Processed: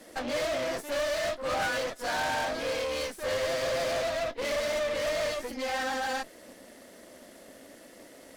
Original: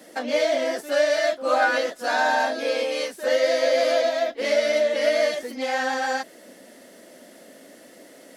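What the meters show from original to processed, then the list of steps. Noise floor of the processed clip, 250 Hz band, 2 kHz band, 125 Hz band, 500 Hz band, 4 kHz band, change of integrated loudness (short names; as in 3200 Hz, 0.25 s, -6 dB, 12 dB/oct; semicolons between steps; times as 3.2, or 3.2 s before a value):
-52 dBFS, -6.5 dB, -7.5 dB, n/a, -9.0 dB, -5.0 dB, -8.0 dB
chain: soft clip -23.5 dBFS, distortion -9 dB; added harmonics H 4 -10 dB, 6 -18 dB, 8 -21 dB, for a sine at -23.5 dBFS; gain -3.5 dB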